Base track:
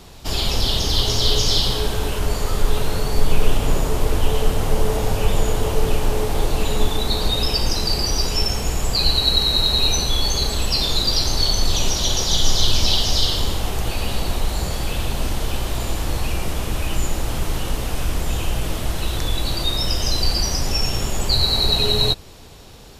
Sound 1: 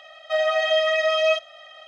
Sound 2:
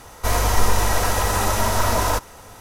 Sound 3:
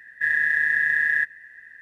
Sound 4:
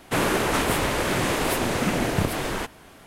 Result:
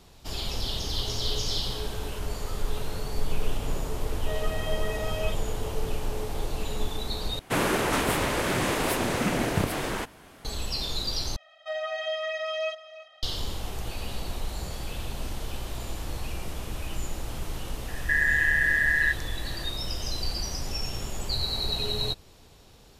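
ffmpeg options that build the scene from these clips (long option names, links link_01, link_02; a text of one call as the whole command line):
ffmpeg -i bed.wav -i cue0.wav -i cue1.wav -i cue2.wav -i cue3.wav -filter_complex "[1:a]asplit=2[link_01][link_02];[0:a]volume=-11dB[link_03];[link_02]aecho=1:1:331:0.158[link_04];[3:a]alimiter=level_in=14.5dB:limit=-1dB:release=50:level=0:latency=1[link_05];[link_03]asplit=3[link_06][link_07][link_08];[link_06]atrim=end=7.394[link_09];[4:a]atrim=end=3.06,asetpts=PTS-STARTPTS,volume=-2.5dB[link_10];[link_07]atrim=start=10.446:end=11.364[link_11];[link_04]atrim=end=1.87,asetpts=PTS-STARTPTS,volume=-10.5dB[link_12];[link_08]atrim=start=13.226[link_13];[link_01]atrim=end=1.87,asetpts=PTS-STARTPTS,volume=-14.5dB,afade=type=in:duration=0.004:curve=hsin,afade=type=out:start_time=1.866:duration=0.004:curve=hsin,adelay=3960[link_14];[link_05]atrim=end=1.81,asetpts=PTS-STARTPTS,volume=-14dB,afade=type=in:duration=0.004:curve=hsin,afade=type=out:start_time=1.806:duration=0.004:curve=hsin,adelay=17880[link_15];[link_09][link_10]acrossfade=duration=0.004:curve1=hsin:curve2=hsin[link_16];[link_16][link_11]acrossfade=duration=0.004:curve1=hsin:curve2=hsin[link_17];[link_17][link_12]acrossfade=duration=0.004:curve1=hsin:curve2=hsin[link_18];[link_18][link_13]acrossfade=duration=0.004:curve1=hsin:curve2=hsin[link_19];[link_19][link_14][link_15]amix=inputs=3:normalize=0" out.wav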